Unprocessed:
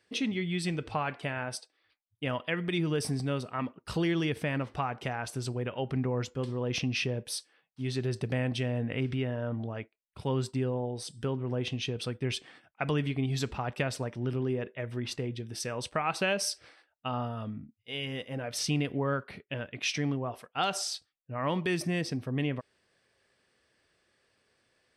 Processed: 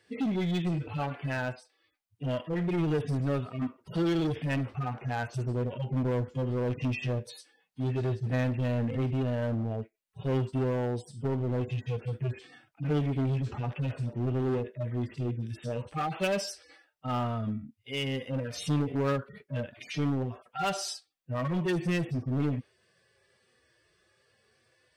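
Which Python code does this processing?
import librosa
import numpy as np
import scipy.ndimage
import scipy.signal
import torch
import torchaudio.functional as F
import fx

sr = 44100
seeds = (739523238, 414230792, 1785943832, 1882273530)

p1 = fx.hpss_only(x, sr, part='harmonic')
p2 = 10.0 ** (-33.5 / 20.0) * (np.abs((p1 / 10.0 ** (-33.5 / 20.0) + 3.0) % 4.0 - 2.0) - 1.0)
p3 = p1 + (p2 * librosa.db_to_amplitude(-3.0))
y = p3 * librosa.db_to_amplitude(1.5)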